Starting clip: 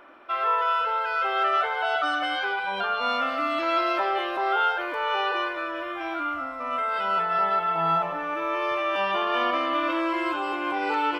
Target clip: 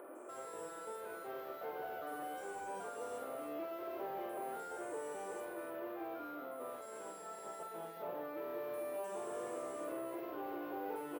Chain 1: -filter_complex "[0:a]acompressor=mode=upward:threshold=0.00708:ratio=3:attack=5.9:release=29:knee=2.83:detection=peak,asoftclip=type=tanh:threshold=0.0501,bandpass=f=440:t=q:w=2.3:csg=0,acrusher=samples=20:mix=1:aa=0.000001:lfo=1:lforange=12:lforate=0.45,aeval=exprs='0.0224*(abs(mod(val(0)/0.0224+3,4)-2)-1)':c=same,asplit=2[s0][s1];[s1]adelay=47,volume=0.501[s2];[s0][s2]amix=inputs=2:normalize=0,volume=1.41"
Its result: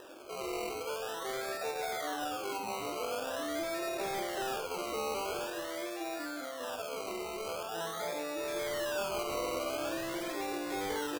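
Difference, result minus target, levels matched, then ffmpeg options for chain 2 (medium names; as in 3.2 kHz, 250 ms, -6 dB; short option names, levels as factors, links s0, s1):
decimation with a swept rate: distortion +17 dB; saturation: distortion -6 dB
-filter_complex "[0:a]acompressor=mode=upward:threshold=0.00708:ratio=3:attack=5.9:release=29:knee=2.83:detection=peak,asoftclip=type=tanh:threshold=0.0158,bandpass=f=440:t=q:w=2.3:csg=0,acrusher=samples=4:mix=1:aa=0.000001:lfo=1:lforange=2.4:lforate=0.45,aeval=exprs='0.0224*(abs(mod(val(0)/0.0224+3,4)-2)-1)':c=same,asplit=2[s0][s1];[s1]adelay=47,volume=0.501[s2];[s0][s2]amix=inputs=2:normalize=0,volume=1.41"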